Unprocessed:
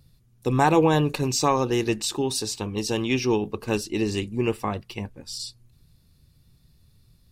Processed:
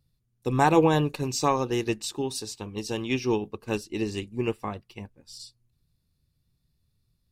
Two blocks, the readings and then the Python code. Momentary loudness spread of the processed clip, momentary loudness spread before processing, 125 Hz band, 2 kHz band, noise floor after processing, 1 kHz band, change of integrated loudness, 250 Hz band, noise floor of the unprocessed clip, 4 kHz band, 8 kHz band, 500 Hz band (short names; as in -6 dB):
23 LU, 14 LU, -3.5 dB, -2.5 dB, -74 dBFS, -2.0 dB, -2.5 dB, -3.0 dB, -61 dBFS, -5.5 dB, -5.5 dB, -2.5 dB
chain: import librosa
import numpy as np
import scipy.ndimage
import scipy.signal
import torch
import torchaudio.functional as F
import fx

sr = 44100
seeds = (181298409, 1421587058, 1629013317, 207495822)

y = fx.upward_expand(x, sr, threshold_db=-43.0, expansion=1.5)